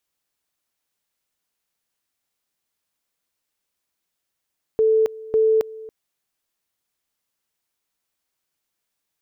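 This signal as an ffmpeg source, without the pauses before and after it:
ffmpeg -f lavfi -i "aevalsrc='pow(10,(-13.5-20*gte(mod(t,0.55),0.27))/20)*sin(2*PI*440*t)':duration=1.1:sample_rate=44100" out.wav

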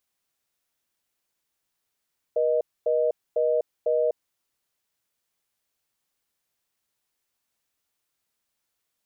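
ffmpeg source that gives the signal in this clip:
ffmpeg -f lavfi -i "aevalsrc='0.075*(sin(2*PI*480*t)+sin(2*PI*620*t))*clip(min(mod(t,0.5),0.25-mod(t,0.5))/0.005,0,1)':duration=1.91:sample_rate=44100" out.wav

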